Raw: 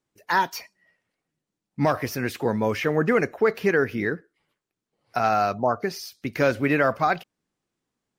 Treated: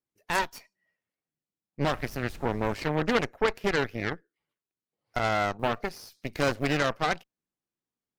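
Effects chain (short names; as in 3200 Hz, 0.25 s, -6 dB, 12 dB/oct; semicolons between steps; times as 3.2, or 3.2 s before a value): 5.59–6.78 G.711 law mismatch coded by mu; added harmonics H 3 -13 dB, 4 -16 dB, 6 -14 dB, 7 -37 dB, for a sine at -8 dBFS; 1.82–2.74 added noise brown -42 dBFS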